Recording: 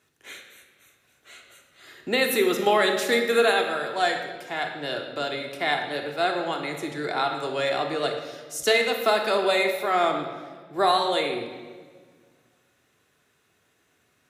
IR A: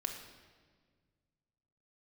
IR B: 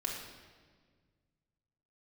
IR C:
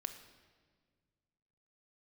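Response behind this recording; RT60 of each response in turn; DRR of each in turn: A; 1.6, 1.6, 1.7 s; 2.5, -3.0, 7.0 dB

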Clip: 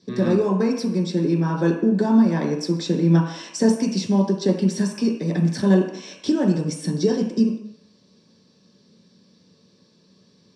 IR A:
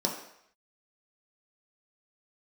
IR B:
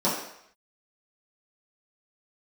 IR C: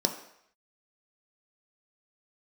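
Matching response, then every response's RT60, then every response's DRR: A; 0.70, 0.70, 0.70 s; -1.0, -10.0, 4.0 dB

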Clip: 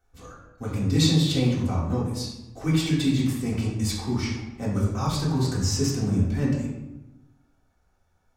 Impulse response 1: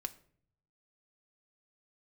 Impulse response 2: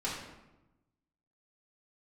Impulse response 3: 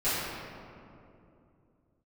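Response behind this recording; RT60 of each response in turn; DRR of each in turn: 2; 0.55, 1.0, 2.7 s; 7.5, -8.0, -16.5 dB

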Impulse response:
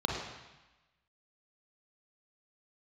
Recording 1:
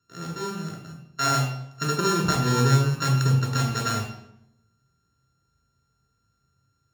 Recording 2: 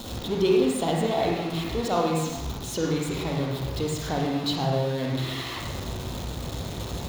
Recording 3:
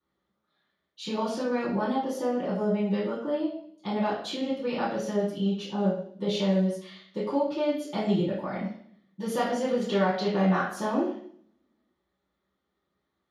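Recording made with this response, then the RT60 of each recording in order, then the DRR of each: 2; 0.80, 1.1, 0.55 s; 0.5, -1.5, -11.5 dB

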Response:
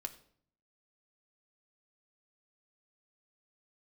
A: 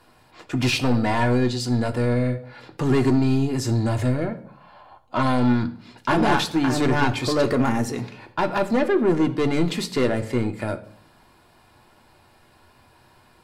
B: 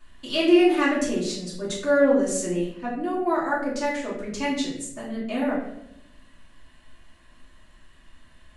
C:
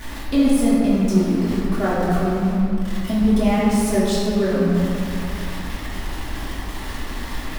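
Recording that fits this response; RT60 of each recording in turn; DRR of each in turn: A; 0.60, 0.80, 2.7 s; 5.0, -8.5, -9.5 dB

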